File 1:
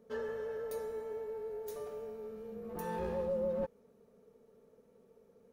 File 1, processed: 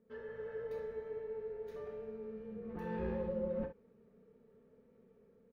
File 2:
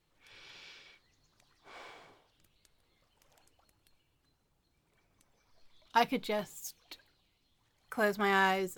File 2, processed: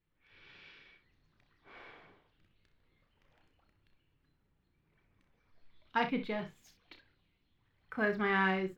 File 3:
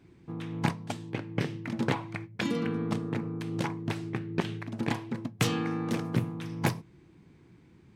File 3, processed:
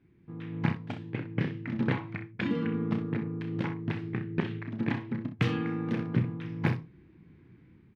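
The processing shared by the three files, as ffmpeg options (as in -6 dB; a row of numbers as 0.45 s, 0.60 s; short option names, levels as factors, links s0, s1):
-af "firequalizer=gain_entry='entry(210,0);entry(680,-8);entry(1800,-1);entry(7700,-27)':delay=0.05:min_phase=1,dynaudnorm=f=150:g=5:m=2.24,aecho=1:1:32|63:0.355|0.282,volume=0.501"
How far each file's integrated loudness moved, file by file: -2.5 LU, -1.5 LU, +0.5 LU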